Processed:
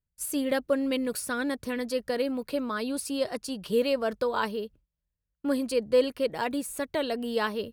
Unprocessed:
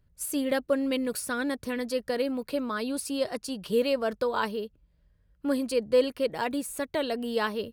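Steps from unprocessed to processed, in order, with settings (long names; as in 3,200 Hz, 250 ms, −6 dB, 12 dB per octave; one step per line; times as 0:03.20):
noise gate with hold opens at −52 dBFS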